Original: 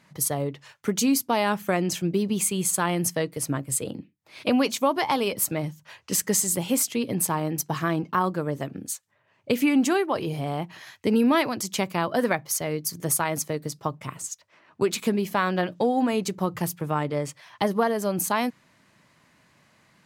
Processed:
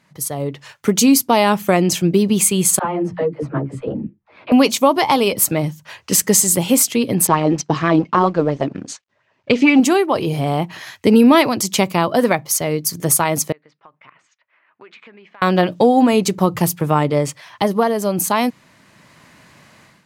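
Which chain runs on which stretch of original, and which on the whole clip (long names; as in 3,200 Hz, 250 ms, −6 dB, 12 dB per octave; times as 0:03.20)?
0:02.79–0:04.52: low-pass filter 1,300 Hz + all-pass dispersion lows, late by 63 ms, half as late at 420 Hz + string-ensemble chorus
0:07.27–0:09.80: mu-law and A-law mismatch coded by A + low-pass filter 6,100 Hz 24 dB per octave + auto-filter bell 4.3 Hz 270–2,800 Hz +9 dB
0:13.52–0:15.42: low-pass filter 2,200 Hz 24 dB per octave + first difference + downward compressor 3 to 1, threshold −53 dBFS
whole clip: dynamic equaliser 1,600 Hz, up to −5 dB, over −45 dBFS, Q 2.9; automatic gain control gain up to 13 dB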